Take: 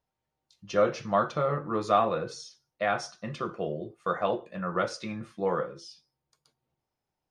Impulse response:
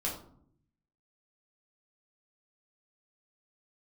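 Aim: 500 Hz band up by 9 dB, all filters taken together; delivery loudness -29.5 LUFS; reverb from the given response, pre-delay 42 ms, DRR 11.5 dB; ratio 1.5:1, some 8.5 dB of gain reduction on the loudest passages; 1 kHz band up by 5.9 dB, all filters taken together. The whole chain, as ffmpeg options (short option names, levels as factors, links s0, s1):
-filter_complex "[0:a]equalizer=f=500:t=o:g=9,equalizer=f=1000:t=o:g=5,acompressor=threshold=0.02:ratio=1.5,asplit=2[s0][s1];[1:a]atrim=start_sample=2205,adelay=42[s2];[s1][s2]afir=irnorm=-1:irlink=0,volume=0.168[s3];[s0][s3]amix=inputs=2:normalize=0,volume=0.891"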